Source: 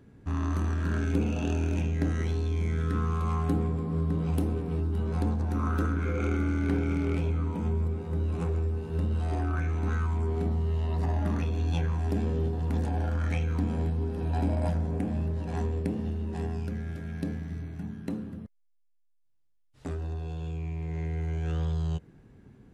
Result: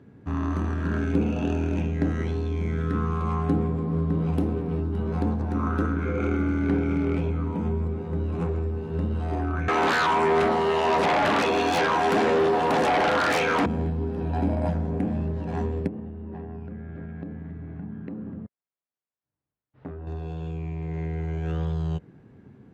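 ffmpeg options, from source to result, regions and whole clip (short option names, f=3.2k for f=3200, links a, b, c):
-filter_complex "[0:a]asettb=1/sr,asplit=3[a][b][c];[a]atrim=end=9.684[d];[b]atrim=start=9.68:end=13.66,asetpts=PTS-STARTPTS,afade=t=in:d=0.004:c=qsin,afade=t=out:st=3.976:d=0.004:c=qsin,highpass=650,aeval=exprs='0.0794*sin(PI/2*7.94*val(0)/0.0794)':c=same[e];[c]atrim=start=13.656[f];[d][e]acrossfade=d=0.004:c1=hsin:c2=qsin[g];[g][f]acrossfade=d=0.004:c1=qsin:c2=hsin,asettb=1/sr,asplit=3[h][i][j];[h]atrim=end=15.874[k];[i]atrim=start=15.87:end=20.07,asetpts=PTS-STARTPTS,afade=t=in:d=0.004:c=qsin,afade=t=out:st=4.196:d=0.004:c=qsin,lowpass=1.9k,acompressor=threshold=-35dB:ratio=10:attack=3.2:release=140:knee=1:detection=peak[l];[j]atrim=start=20.066[m];[k][l]acrossfade=d=0.004:c1=hsin:c2=qsin[n];[n][m]acrossfade=d=0.004:c1=qsin:c2=hsin,highpass=97,aemphasis=mode=reproduction:type=75kf,volume=5dB"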